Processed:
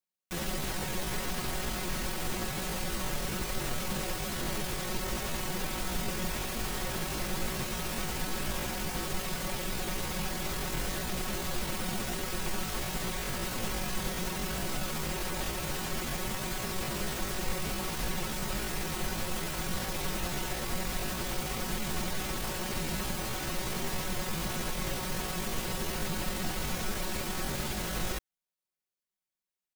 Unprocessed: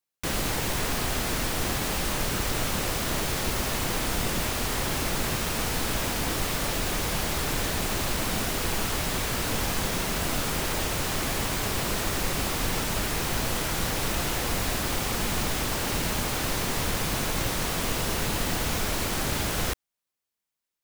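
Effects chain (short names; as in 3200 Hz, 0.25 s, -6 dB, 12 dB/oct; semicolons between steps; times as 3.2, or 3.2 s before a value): low shelf 440 Hz +2 dB; comb 5.4 ms, depth 51%; tempo 0.7×; gain -7.5 dB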